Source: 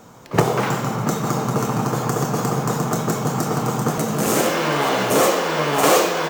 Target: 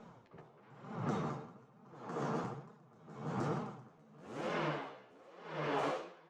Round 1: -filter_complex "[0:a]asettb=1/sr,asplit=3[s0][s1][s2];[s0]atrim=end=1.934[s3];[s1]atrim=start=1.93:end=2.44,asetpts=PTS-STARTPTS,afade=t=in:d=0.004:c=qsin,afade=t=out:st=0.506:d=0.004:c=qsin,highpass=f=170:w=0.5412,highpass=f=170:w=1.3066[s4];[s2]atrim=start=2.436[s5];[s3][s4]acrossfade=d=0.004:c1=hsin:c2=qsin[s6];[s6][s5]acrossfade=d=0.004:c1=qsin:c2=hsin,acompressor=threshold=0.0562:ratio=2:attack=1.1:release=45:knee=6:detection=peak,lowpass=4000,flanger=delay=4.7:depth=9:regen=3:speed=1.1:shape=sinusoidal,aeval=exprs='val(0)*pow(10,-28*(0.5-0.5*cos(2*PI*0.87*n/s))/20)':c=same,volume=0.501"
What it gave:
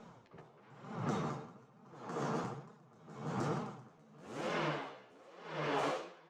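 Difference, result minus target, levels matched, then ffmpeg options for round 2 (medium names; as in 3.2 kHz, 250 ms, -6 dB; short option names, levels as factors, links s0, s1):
8 kHz band +4.0 dB
-filter_complex "[0:a]asettb=1/sr,asplit=3[s0][s1][s2];[s0]atrim=end=1.934[s3];[s1]atrim=start=1.93:end=2.44,asetpts=PTS-STARTPTS,afade=t=in:d=0.004:c=qsin,afade=t=out:st=0.506:d=0.004:c=qsin,highpass=f=170:w=0.5412,highpass=f=170:w=1.3066[s4];[s2]atrim=start=2.436[s5];[s3][s4]acrossfade=d=0.004:c1=hsin:c2=qsin[s6];[s6][s5]acrossfade=d=0.004:c1=qsin:c2=hsin,acompressor=threshold=0.0562:ratio=2:attack=1.1:release=45:knee=6:detection=peak,lowpass=4000,highshelf=f=3100:g=-5.5,flanger=delay=4.7:depth=9:regen=3:speed=1.1:shape=sinusoidal,aeval=exprs='val(0)*pow(10,-28*(0.5-0.5*cos(2*PI*0.87*n/s))/20)':c=same,volume=0.501"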